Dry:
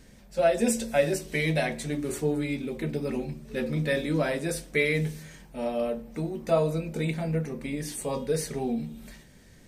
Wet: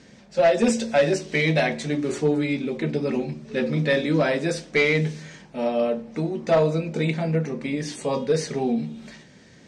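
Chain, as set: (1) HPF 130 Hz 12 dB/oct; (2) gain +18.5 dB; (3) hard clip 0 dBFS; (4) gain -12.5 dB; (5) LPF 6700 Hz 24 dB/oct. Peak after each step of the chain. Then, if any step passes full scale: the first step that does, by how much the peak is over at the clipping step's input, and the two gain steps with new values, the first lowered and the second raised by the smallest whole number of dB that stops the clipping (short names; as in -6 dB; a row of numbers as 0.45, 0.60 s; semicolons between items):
-10.0, +8.5, 0.0, -12.5, -11.5 dBFS; step 2, 8.5 dB; step 2 +9.5 dB, step 4 -3.5 dB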